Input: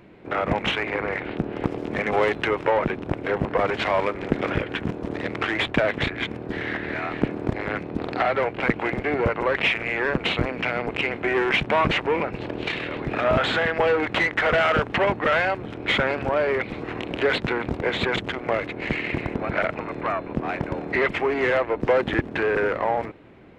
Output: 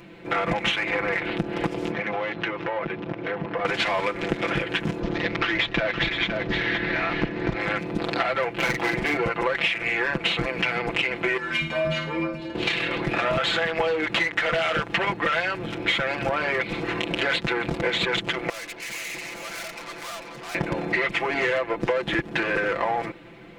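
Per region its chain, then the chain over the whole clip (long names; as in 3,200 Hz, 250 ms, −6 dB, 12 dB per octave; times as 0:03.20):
0:01.91–0:03.65: high-pass filter 78 Hz + high-frequency loss of the air 220 metres + downward compressor 3 to 1, threshold −30 dBFS
0:05.00–0:07.58: low-pass filter 5,800 Hz 24 dB per octave + low-shelf EQ 67 Hz +10 dB + single-tap delay 515 ms −10 dB
0:08.53–0:09.17: hard clipping −18.5 dBFS + double-tracking delay 41 ms −3 dB
0:11.37–0:12.55: low-shelf EQ 340 Hz +8.5 dB + stiff-string resonator 77 Hz, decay 0.56 s, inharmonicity 0.008 + flutter between parallel walls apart 9.4 metres, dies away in 0.38 s
0:18.49–0:20.55: high-pass filter 820 Hz 6 dB per octave + tube saturation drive 40 dB, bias 0.45 + single-tap delay 445 ms −8 dB
whole clip: high-shelf EQ 2,200 Hz +10.5 dB; comb filter 5.9 ms, depth 86%; downward compressor, threshold −21 dBFS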